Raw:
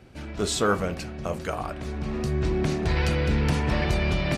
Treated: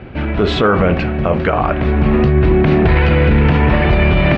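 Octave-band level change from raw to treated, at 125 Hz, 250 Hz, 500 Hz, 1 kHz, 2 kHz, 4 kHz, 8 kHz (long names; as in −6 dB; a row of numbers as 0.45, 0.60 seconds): +13.0 dB, +14.0 dB, +13.5 dB, +13.0 dB, +12.5 dB, +7.5 dB, below −10 dB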